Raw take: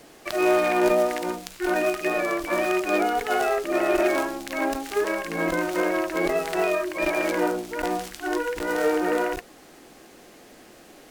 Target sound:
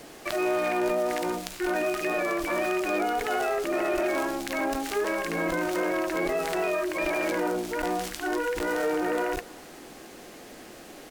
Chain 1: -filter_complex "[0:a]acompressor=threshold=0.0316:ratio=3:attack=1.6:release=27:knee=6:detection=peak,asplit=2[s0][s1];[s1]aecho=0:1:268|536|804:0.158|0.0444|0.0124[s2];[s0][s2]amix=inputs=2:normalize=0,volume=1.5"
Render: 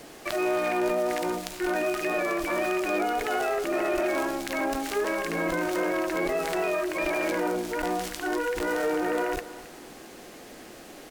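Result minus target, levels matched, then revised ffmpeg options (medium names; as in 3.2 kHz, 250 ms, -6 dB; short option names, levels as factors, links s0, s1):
echo-to-direct +7.5 dB
-filter_complex "[0:a]acompressor=threshold=0.0316:ratio=3:attack=1.6:release=27:knee=6:detection=peak,asplit=2[s0][s1];[s1]aecho=0:1:268|536:0.0668|0.0187[s2];[s0][s2]amix=inputs=2:normalize=0,volume=1.5"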